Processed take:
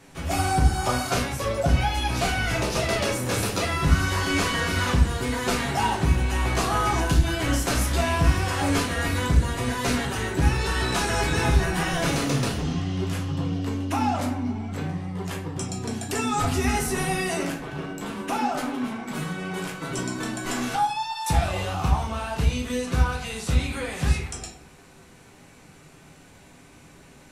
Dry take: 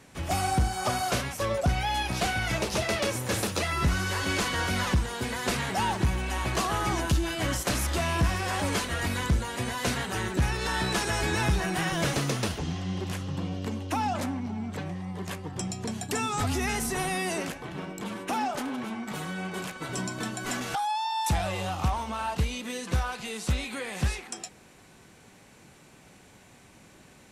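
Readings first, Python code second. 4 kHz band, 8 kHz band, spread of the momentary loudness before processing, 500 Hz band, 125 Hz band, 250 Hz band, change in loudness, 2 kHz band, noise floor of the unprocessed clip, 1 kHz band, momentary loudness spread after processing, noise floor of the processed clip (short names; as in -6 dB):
+2.5 dB, +2.5 dB, 8 LU, +4.0 dB, +5.5 dB, +4.5 dB, +4.0 dB, +3.0 dB, -54 dBFS, +3.5 dB, 8 LU, -50 dBFS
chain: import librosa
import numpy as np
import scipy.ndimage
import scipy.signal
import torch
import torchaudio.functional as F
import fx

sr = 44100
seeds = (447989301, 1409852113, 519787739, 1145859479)

y = fx.room_shoebox(x, sr, seeds[0], volume_m3=51.0, walls='mixed', distance_m=0.69)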